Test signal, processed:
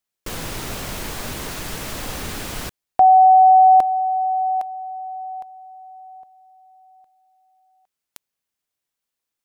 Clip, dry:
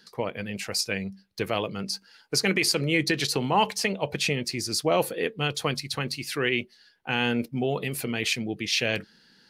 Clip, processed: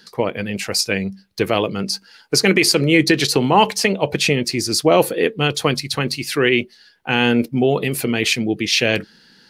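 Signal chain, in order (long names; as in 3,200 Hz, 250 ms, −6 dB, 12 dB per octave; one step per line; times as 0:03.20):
dynamic equaliser 330 Hz, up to +4 dB, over −38 dBFS, Q 1.3
level +8 dB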